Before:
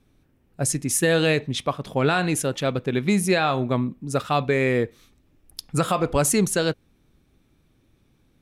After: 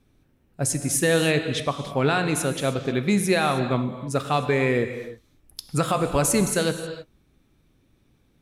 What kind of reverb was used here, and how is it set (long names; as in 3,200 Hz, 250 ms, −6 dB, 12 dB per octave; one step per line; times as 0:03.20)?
reverb whose tail is shaped and stops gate 340 ms flat, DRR 8 dB
level −1 dB